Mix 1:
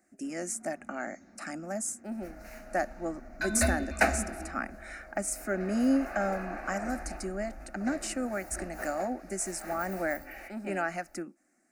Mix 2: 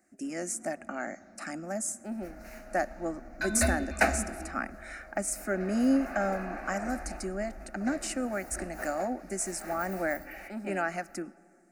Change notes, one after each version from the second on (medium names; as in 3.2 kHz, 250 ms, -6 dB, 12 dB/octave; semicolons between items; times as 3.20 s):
speech: send on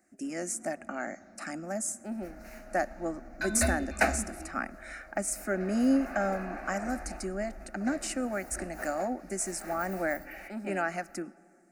second sound: send -9.5 dB